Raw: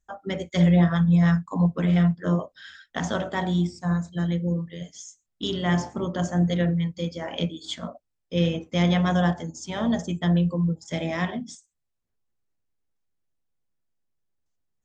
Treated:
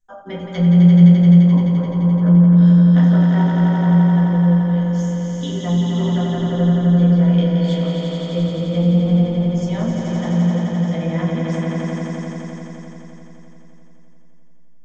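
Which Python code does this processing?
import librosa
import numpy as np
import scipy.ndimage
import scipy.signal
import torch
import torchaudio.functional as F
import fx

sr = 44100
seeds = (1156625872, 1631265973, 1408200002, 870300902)

p1 = fx.env_lowpass_down(x, sr, base_hz=350.0, full_db=-18.0)
p2 = p1 + fx.echo_swell(p1, sr, ms=86, loudest=5, wet_db=-4.5, dry=0)
p3 = fx.room_shoebox(p2, sr, seeds[0], volume_m3=140.0, walls='furnished', distance_m=1.9)
y = p3 * 10.0 ** (-4.5 / 20.0)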